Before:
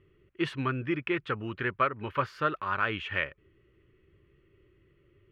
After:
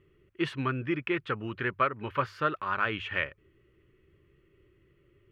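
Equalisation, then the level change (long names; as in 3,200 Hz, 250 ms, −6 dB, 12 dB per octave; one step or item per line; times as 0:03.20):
mains-hum notches 50/100 Hz
0.0 dB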